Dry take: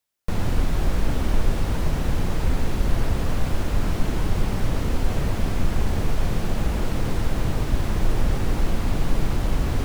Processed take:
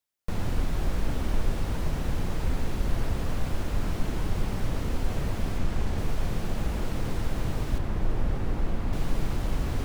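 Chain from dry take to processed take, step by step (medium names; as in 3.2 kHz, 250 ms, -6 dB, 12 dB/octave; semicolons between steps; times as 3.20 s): 5.58–5.98 s: median filter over 3 samples; 7.78–8.93 s: treble shelf 3.3 kHz -10.5 dB; trim -5.5 dB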